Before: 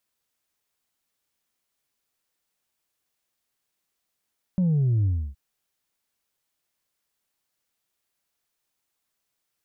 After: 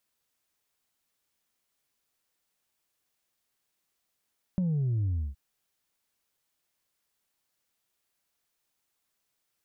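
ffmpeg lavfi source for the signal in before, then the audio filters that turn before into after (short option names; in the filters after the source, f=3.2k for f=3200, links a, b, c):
-f lavfi -i "aevalsrc='0.112*clip((0.77-t)/0.3,0,1)*tanh(1.19*sin(2*PI*190*0.77/log(65/190)*(exp(log(65/190)*t/0.77)-1)))/tanh(1.19)':d=0.77:s=44100"
-af "acompressor=threshold=-27dB:ratio=6"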